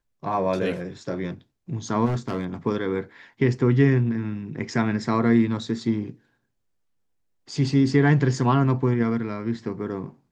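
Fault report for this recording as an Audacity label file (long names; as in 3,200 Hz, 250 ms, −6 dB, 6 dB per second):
2.050000	2.450000	clipping −21 dBFS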